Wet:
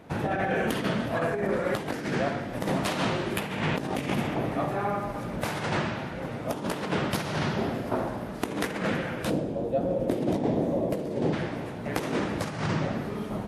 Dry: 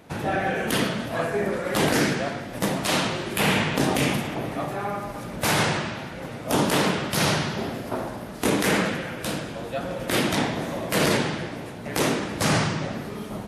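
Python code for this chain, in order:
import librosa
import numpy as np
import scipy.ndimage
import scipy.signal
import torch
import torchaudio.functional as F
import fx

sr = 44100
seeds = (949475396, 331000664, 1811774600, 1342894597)

y = fx.high_shelf(x, sr, hz=3000.0, db=-9.0)
y = fx.over_compress(y, sr, threshold_db=-26.0, ratio=-0.5)
y = fx.curve_eq(y, sr, hz=(130.0, 300.0, 560.0, 1400.0, 7300.0), db=(0, 4, 4, -14, -8), at=(9.29, 11.32), fade=0.02)
y = y * librosa.db_to_amplitude(-1.0)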